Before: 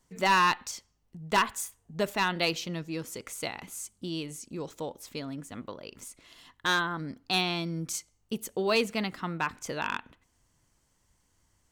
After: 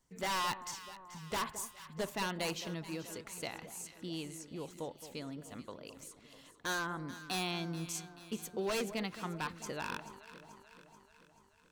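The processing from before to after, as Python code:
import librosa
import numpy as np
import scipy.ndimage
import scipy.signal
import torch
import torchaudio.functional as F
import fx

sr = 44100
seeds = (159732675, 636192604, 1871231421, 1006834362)

y = 10.0 ** (-22.5 / 20.0) * (np.abs((x / 10.0 ** (-22.5 / 20.0) + 3.0) % 4.0 - 2.0) - 1.0)
y = fx.echo_alternate(y, sr, ms=217, hz=1100.0, feedback_pct=75, wet_db=-11.5)
y = F.gain(torch.from_numpy(y), -6.5).numpy()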